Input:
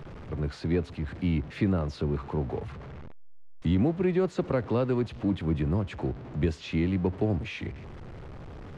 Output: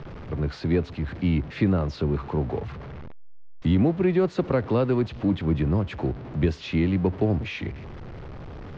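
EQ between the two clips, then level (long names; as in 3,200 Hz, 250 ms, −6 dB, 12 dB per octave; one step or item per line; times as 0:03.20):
low-pass filter 6,100 Hz 24 dB per octave
+4.0 dB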